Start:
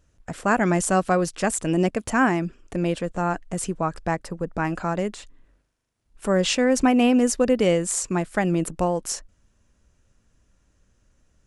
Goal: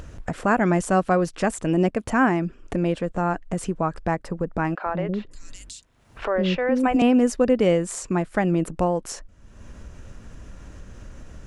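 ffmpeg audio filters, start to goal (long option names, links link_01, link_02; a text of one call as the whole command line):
ffmpeg -i in.wav -filter_complex "[0:a]asettb=1/sr,asplit=3[link_01][link_02][link_03];[link_01]atrim=end=4.754[link_04];[link_02]atrim=start=4.75:end=7.02,asetpts=PTS-STARTPTS,afade=type=in:duration=0.004:curve=qsin,afade=type=out:start_time=2.266:duration=0.004:curve=qsin,acrossover=split=400|4200[link_05][link_06][link_07];[link_05]adelay=110[link_08];[link_07]adelay=560[link_09];[link_08][link_06][link_09]amix=inputs=3:normalize=0,atrim=end_sample=100107[link_10];[link_03]atrim=start=7.016[link_11];[link_04][link_10]acrossfade=duration=0.004:curve1=hsin:curve2=qsin[link_12];[link_12][link_11]acrossfade=duration=0.004:curve1=qsin:curve2=hsin,acompressor=mode=upward:threshold=-22dB:ratio=2.5,highshelf=frequency=3700:gain=-10.5,volume=1dB" out.wav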